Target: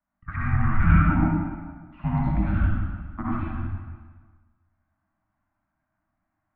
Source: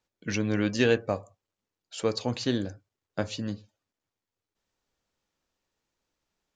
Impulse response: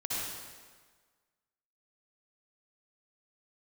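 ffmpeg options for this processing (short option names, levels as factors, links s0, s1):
-filter_complex "[0:a]asuperstop=centerf=750:order=12:qfactor=2.9,bandreject=f=105.8:t=h:w=4,bandreject=f=211.6:t=h:w=4,bandreject=f=317.4:t=h:w=4,bandreject=f=423.2:t=h:w=4,bandreject=f=529:t=h:w=4,bandreject=f=634.8:t=h:w=4,bandreject=f=740.6:t=h:w=4,bandreject=f=846.4:t=h:w=4,bandreject=f=952.2:t=h:w=4,bandreject=f=1058:t=h:w=4,bandreject=f=1163.8:t=h:w=4,bandreject=f=1269.6:t=h:w=4,bandreject=f=1375.4:t=h:w=4,bandreject=f=1481.2:t=h:w=4,bandreject=f=1587:t=h:w=4,bandreject=f=1692.8:t=h:w=4,bandreject=f=1798.6:t=h:w=4,bandreject=f=1904.4:t=h:w=4,bandreject=f=2010.2:t=h:w=4,bandreject=f=2116:t=h:w=4,bandreject=f=2221.8:t=h:w=4,bandreject=f=2327.6:t=h:w=4,bandreject=f=2433.4:t=h:w=4,bandreject=f=2539.2:t=h:w=4,bandreject=f=2645:t=h:w=4,bandreject=f=2750.8:t=h:w=4,bandreject=f=2856.6:t=h:w=4,bandreject=f=2962.4:t=h:w=4,bandreject=f=3068.2:t=h:w=4,highpass=f=200:t=q:w=0.5412,highpass=f=200:t=q:w=1.307,lowpass=f=2100:t=q:w=0.5176,lowpass=f=2100:t=q:w=0.7071,lowpass=f=2100:t=q:w=1.932,afreqshift=-300[s0];[1:a]atrim=start_sample=2205[s1];[s0][s1]afir=irnorm=-1:irlink=0,volume=1.5"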